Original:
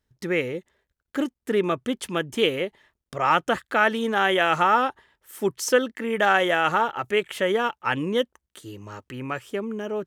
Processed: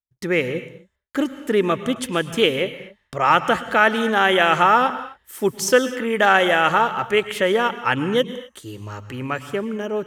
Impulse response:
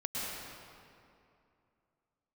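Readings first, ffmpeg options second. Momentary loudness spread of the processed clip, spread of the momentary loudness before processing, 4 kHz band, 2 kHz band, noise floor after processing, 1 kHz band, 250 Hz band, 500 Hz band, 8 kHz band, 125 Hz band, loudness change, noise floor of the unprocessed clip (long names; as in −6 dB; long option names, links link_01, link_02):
16 LU, 13 LU, +5.0 dB, +4.5 dB, −68 dBFS, +4.5 dB, +4.0 dB, +4.0 dB, +5.0 dB, +5.0 dB, +4.5 dB, −84 dBFS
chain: -filter_complex "[0:a]agate=range=-33dB:threshold=-51dB:ratio=3:detection=peak,asplit=2[link_01][link_02];[link_02]equalizer=frequency=310:width_type=o:width=2.5:gain=-9[link_03];[1:a]atrim=start_sample=2205,afade=type=out:start_time=0.32:duration=0.01,atrim=end_sample=14553,lowshelf=frequency=230:gain=11.5[link_04];[link_03][link_04]afir=irnorm=-1:irlink=0,volume=-11dB[link_05];[link_01][link_05]amix=inputs=2:normalize=0,volume=3dB"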